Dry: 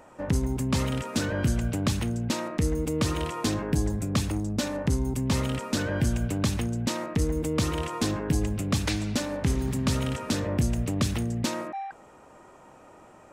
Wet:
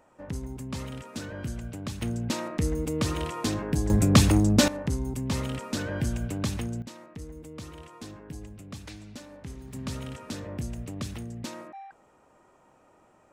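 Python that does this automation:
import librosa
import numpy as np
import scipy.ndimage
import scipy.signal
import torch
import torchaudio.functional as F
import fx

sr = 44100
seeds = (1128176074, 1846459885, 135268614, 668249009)

y = fx.gain(x, sr, db=fx.steps((0.0, -9.5), (2.02, -1.5), (3.9, 8.5), (4.68, -3.5), (6.82, -15.5), (9.73, -9.0)))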